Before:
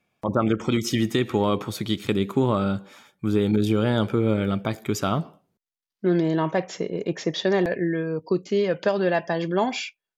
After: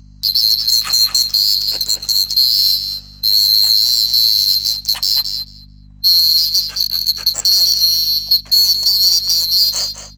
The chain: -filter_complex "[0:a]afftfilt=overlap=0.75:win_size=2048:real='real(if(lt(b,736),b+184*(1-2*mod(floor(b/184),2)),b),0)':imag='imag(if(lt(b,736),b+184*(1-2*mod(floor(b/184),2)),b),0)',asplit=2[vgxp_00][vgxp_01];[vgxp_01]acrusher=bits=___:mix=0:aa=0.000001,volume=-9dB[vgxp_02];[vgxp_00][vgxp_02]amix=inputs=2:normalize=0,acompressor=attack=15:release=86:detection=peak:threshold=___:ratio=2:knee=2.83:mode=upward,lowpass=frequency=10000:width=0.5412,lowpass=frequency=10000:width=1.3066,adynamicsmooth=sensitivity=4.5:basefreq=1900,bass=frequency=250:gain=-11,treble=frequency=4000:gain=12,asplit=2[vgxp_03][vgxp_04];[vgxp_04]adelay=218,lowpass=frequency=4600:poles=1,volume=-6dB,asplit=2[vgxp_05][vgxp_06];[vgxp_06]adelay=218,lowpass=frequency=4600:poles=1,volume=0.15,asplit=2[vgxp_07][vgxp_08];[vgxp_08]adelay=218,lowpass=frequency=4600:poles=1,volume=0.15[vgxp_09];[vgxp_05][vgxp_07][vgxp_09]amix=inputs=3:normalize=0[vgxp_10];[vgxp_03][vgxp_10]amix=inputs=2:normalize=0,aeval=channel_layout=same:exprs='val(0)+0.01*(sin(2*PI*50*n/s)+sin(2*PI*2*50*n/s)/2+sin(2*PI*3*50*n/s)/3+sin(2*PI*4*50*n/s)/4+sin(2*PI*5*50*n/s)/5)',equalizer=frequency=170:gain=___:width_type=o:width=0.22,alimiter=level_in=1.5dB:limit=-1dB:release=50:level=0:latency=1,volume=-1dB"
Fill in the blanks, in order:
5, -35dB, 6